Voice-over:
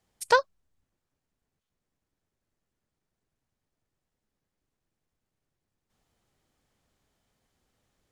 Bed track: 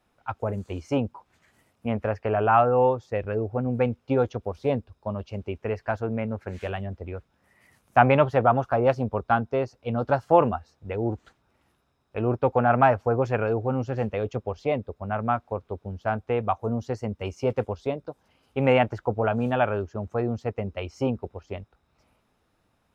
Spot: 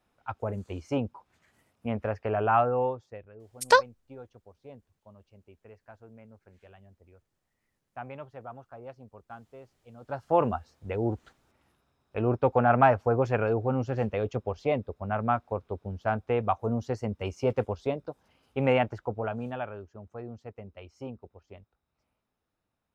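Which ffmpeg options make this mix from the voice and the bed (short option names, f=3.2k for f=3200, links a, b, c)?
-filter_complex "[0:a]adelay=3400,volume=2dB[a];[1:a]volume=17.5dB,afade=t=out:st=2.58:d=0.7:silence=0.112202,afade=t=in:st=10:d=0.6:silence=0.0841395,afade=t=out:st=18.25:d=1.48:silence=0.237137[b];[a][b]amix=inputs=2:normalize=0"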